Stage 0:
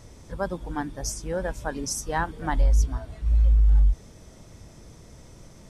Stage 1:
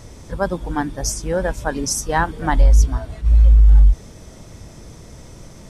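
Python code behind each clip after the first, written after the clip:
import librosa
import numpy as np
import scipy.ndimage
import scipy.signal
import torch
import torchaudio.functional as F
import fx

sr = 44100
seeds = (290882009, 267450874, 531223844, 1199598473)

y = fx.attack_slew(x, sr, db_per_s=380.0)
y = F.gain(torch.from_numpy(y), 8.0).numpy()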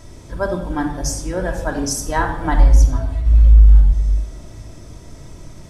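y = fx.room_shoebox(x, sr, seeds[0], volume_m3=2800.0, walls='furnished', distance_m=2.9)
y = F.gain(torch.from_numpy(y), -3.0).numpy()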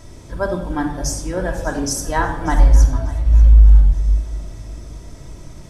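y = fx.echo_feedback(x, sr, ms=589, feedback_pct=35, wet_db=-19)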